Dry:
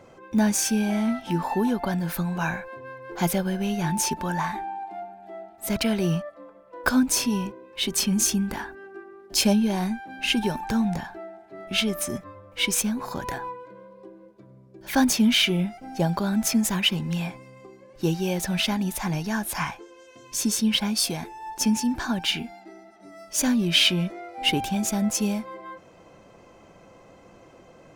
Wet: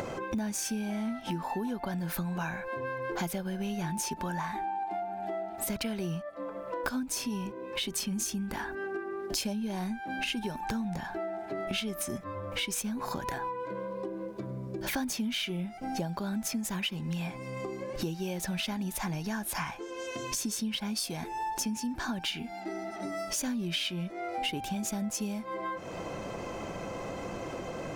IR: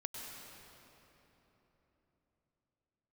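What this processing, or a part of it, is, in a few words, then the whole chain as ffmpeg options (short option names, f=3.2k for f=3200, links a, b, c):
upward and downward compression: -af "acompressor=mode=upward:threshold=-25dB:ratio=2.5,acompressor=threshold=-31dB:ratio=6"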